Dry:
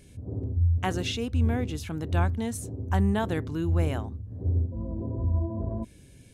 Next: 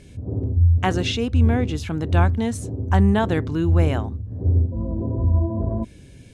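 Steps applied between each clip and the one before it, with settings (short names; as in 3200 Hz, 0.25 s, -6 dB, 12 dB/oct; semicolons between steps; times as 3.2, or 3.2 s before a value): air absorption 51 m; gain +7.5 dB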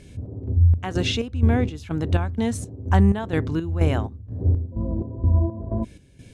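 chopper 2.1 Hz, depth 65%, duty 55%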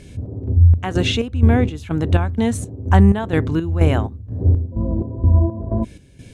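dynamic EQ 5100 Hz, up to -6 dB, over -57 dBFS, Q 2.6; gain +5 dB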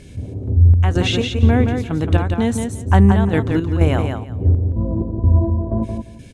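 feedback echo 0.173 s, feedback 19%, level -5.5 dB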